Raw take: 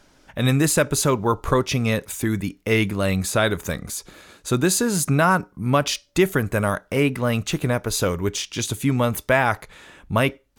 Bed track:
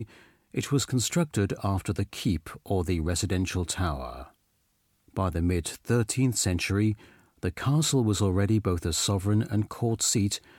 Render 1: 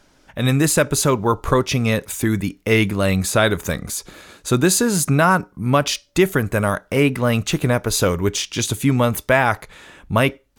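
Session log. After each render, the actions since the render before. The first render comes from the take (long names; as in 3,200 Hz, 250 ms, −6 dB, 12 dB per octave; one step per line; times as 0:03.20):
automatic gain control gain up to 4.5 dB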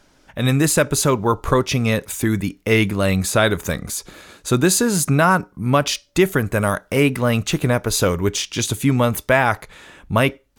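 0:06.61–0:07.23: high-shelf EQ 4,900 Hz +4 dB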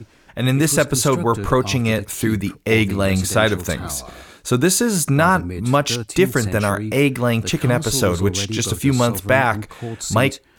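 mix in bed track −2 dB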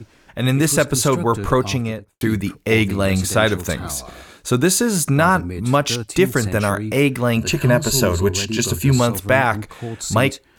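0:01.61–0:02.21: fade out and dull
0:07.36–0:08.99: EQ curve with evenly spaced ripples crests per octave 1.4, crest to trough 11 dB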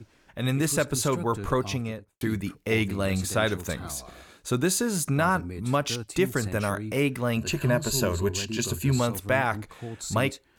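level −8.5 dB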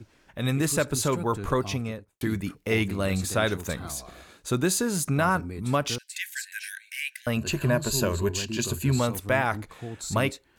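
0:05.98–0:07.27: linear-phase brick-wall high-pass 1,500 Hz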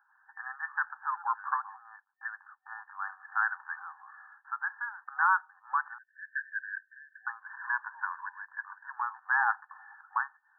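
brick-wall band-pass 760–1,800 Hz
spectral tilt +4 dB per octave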